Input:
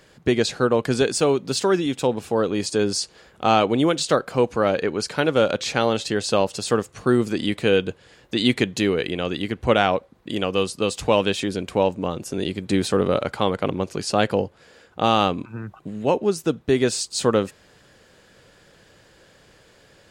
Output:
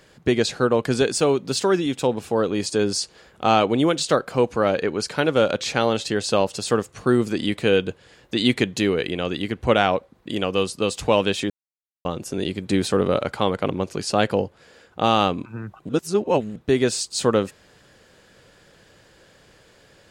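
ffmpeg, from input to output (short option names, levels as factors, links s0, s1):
-filter_complex "[0:a]asplit=5[s0][s1][s2][s3][s4];[s0]atrim=end=11.5,asetpts=PTS-STARTPTS,afade=t=out:st=11.496:d=0.004:c=hsin[s5];[s1]atrim=start=11.5:end=12.05,asetpts=PTS-STARTPTS,volume=0[s6];[s2]atrim=start=12.05:end=15.892,asetpts=PTS-STARTPTS,afade=t=in:d=0.004:c=hsin[s7];[s3]atrim=start=15.888:end=16.562,asetpts=PTS-STARTPTS,areverse[s8];[s4]atrim=start=16.558[s9];[s5][s6][s7]concat=n=3:v=0:a=1[s10];[s10][s8]acrossfade=d=0.004:c1=hsin:c2=hsin[s11];[s11][s9]acrossfade=d=0.004:c1=hsin:c2=hsin"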